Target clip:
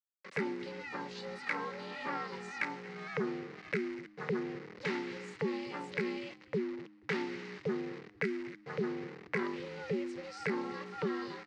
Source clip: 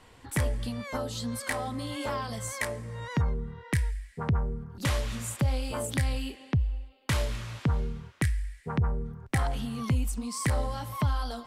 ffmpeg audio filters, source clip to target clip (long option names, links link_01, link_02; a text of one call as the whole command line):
ffmpeg -i in.wav -filter_complex "[0:a]asettb=1/sr,asplit=3[link_01][link_02][link_03];[link_01]atrim=end=1.144[link_04];[link_02]atrim=start=1.14:end=3.82,asetpts=PTS-STARTPTS,afade=type=in:duration=0.004:curve=qsin,afade=type=out:start_time=2.676:duration=0.004:curve=qsin,equalizer=frequency=800:width=1.1:gain=4[link_05];[link_03]atrim=start=3.816[link_06];[link_04][link_05]acrossfade=duration=0.004:curve1=hsin:curve2=qsin[link_07];[link_07][link_06]acrossfade=duration=0.004:curve1=qsin:curve2=hsin,acrusher=bits=6:mix=0:aa=0.000001,aeval=exprs='val(0)*sin(2*PI*300*n/s)':channel_layout=same,highpass=frequency=160:width=0.5412,highpass=frequency=160:width=1.3066,equalizer=frequency=250:width_type=q:width=4:gain=-7,equalizer=frequency=670:width_type=q:width=4:gain=-10,equalizer=frequency=2000:width_type=q:width=4:gain=9,equalizer=frequency=3400:width_type=q:width=4:gain=-6,lowpass=frequency=4800:width=0.5412,lowpass=frequency=4800:width=1.3066,asplit=4[link_08][link_09][link_10][link_11];[link_09]adelay=242,afreqshift=-41,volume=-21dB[link_12];[link_10]adelay=484,afreqshift=-82,volume=-30.1dB[link_13];[link_11]adelay=726,afreqshift=-123,volume=-39.2dB[link_14];[link_08][link_12][link_13][link_14]amix=inputs=4:normalize=0,volume=-3.5dB" out.wav